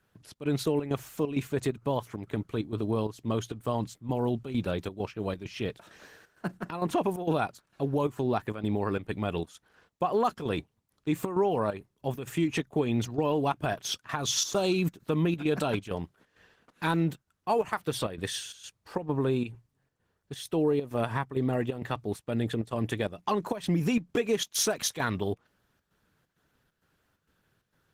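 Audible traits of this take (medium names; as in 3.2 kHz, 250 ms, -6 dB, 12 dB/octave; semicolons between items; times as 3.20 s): chopped level 2.2 Hz, depth 65%, duty 75%; Opus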